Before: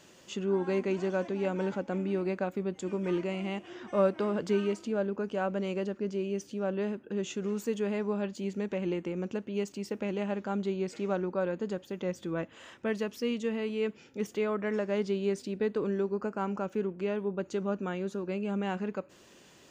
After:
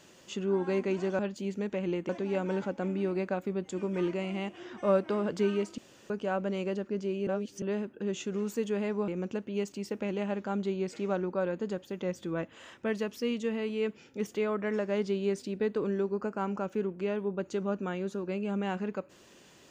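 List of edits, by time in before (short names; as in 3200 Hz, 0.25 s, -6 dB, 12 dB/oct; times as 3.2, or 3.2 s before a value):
4.88–5.2 room tone
6.37–6.72 reverse
8.18–9.08 move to 1.19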